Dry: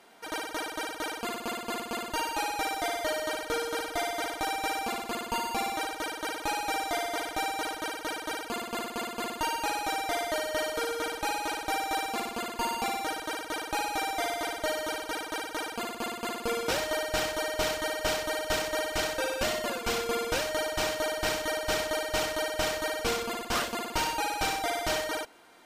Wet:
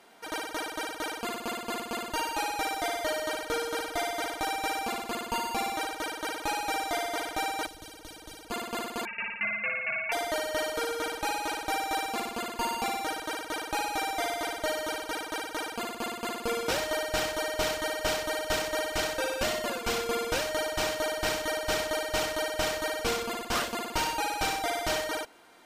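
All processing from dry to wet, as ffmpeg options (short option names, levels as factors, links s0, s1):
-filter_complex "[0:a]asettb=1/sr,asplit=3[s0][s1][s2];[s0]atrim=end=7.664[s3];[s1]atrim=start=7.66:end=8.51,asetpts=PTS-STARTPTS,afade=t=in:d=0.004:c=qsin,afade=t=out:st=0.846:d=0.004:c=qsin,tiltshelf=f=660:g=6.5,acrossover=split=130|3000[s4][s5][s6];[s5]acompressor=threshold=0.00447:ratio=6:attack=3.2:release=140:knee=2.83:detection=peak[s7];[s4][s7][s6]amix=inputs=3:normalize=0[s8];[s2]atrim=start=8.506[s9];[s3][s8]acrossfade=d=0.004:c1=hsin:c2=qsin[s10];[s10][s9]acrossfade=d=0.004:c1=qsin:c2=hsin,asettb=1/sr,asplit=3[s11][s12][s13];[s11]atrim=end=9.054[s14];[s12]atrim=start=9.05:end=10.12,asetpts=PTS-STARTPTS,afade=t=in:d=0.004:c=qsin,afade=t=out:st=1.066:d=0.004:c=qsin,highpass=f=82:w=0.5412,highpass=f=82:w=1.3066,lowpass=f=2600:t=q:w=0.5098,lowpass=f=2600:t=q:w=0.6013,lowpass=f=2600:t=q:w=0.9,lowpass=f=2600:t=q:w=2.563,afreqshift=-3000[s15];[s13]atrim=start=10.116[s16];[s14][s15]acrossfade=d=0.004:c1=hsin:c2=qsin[s17];[s17][s16]acrossfade=d=0.004:c1=qsin:c2=hsin"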